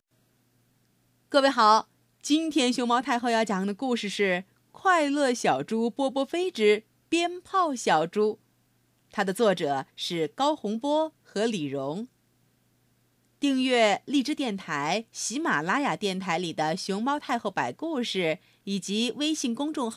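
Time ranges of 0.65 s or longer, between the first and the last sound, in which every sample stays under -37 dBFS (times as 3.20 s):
8.34–9.14 s
12.04–13.42 s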